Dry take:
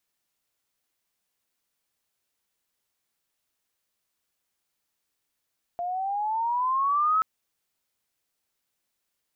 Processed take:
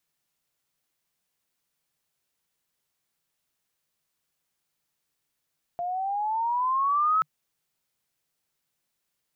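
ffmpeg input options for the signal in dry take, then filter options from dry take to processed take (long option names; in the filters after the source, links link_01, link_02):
-f lavfi -i "aevalsrc='pow(10,(-19+8.5*(t/1.43-1))/20)*sin(2*PI*692*1.43/(11*log(2)/12)*(exp(11*log(2)/12*t/1.43)-1))':duration=1.43:sample_rate=44100"
-af "equalizer=frequency=150:width_type=o:width=0.36:gain=9"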